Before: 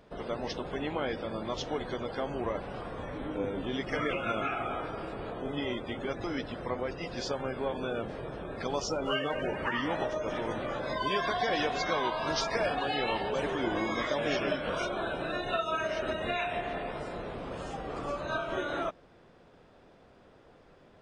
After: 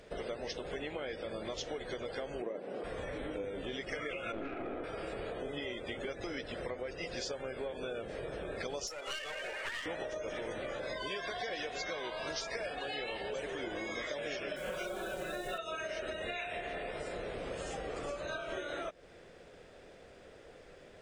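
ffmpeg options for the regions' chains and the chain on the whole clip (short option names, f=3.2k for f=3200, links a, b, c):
-filter_complex "[0:a]asettb=1/sr,asplit=3[a][b][c];[a]atrim=end=2.424[d];[b]atrim=start=2.42:end=2.84,asetpts=PTS-STARTPTS,afade=t=in:d=0.004:c=qsin,afade=t=out:st=0.416:d=0.004:c=qsin,highpass=f=210:w=0.5412,highpass=f=210:w=1.3066,tiltshelf=f=770:g=8[e];[c]atrim=start=2.836[f];[d][e]acrossfade=d=0.004:c1=hsin:c2=qsin[g];[g][f]acrossfade=d=0.004:c1=qsin:c2=hsin,asettb=1/sr,asplit=3[h][i][j];[h]atrim=end=4.324[k];[i]atrim=start=4.32:end=4.84,asetpts=PTS-STARTPTS,afade=t=in:d=0.004:c=qsin,afade=t=out:st=0.516:d=0.004:c=qsin,lowpass=f=1.3k:p=1,equalizer=f=290:t=o:w=1.1:g=14.5,aeval=exprs='(tanh(14.1*val(0)+0.55)-tanh(0.55))/14.1':c=same[l];[j]atrim=start=4.836[m];[k][l]acrossfade=d=0.004:c1=hsin:c2=qsin[n];[n][m]acrossfade=d=0.004:c1=qsin:c2=hsin,asettb=1/sr,asplit=3[o][p][q];[o]atrim=end=8.874[r];[p]atrim=start=8.87:end=9.86,asetpts=PTS-STARTPTS,afade=t=in:d=0.004:c=qsin,afade=t=out:st=0.986:d=0.004:c=qsin,highpass=870,aeval=exprs='clip(val(0),-1,0.01)':c=same[s];[q]atrim=start=9.856[t];[r][s]acrossfade=d=0.004:c1=hsin:c2=qsin[u];[u][t]acrossfade=d=0.004:c1=qsin:c2=hsin,asettb=1/sr,asplit=3[v][w][x];[v]atrim=end=14.564[y];[w]atrim=start=14.56:end=15.58,asetpts=PTS-STARTPTS,afade=t=in:d=0.004:c=qsin,afade=t=out:st=1.016:d=0.004:c=qsin,aemphasis=mode=reproduction:type=50fm,acrusher=bits=9:dc=4:mix=0:aa=0.000001,aecho=1:1:5.4:0.72,atrim=end_sample=44982[z];[x]atrim=start=15.576[aa];[y][z]acrossfade=d=0.004:c1=hsin:c2=qsin[ab];[ab][aa]acrossfade=d=0.004:c1=qsin:c2=hsin,equalizer=f=125:t=o:w=1:g=-4,equalizer=f=250:t=o:w=1:g=-5,equalizer=f=500:t=o:w=1:g=5,equalizer=f=1k:t=o:w=1:g=-8,equalizer=f=2k:t=o:w=1:g=5,equalizer=f=8k:t=o:w=1:g=9,acompressor=threshold=-40dB:ratio=6,volume=3dB"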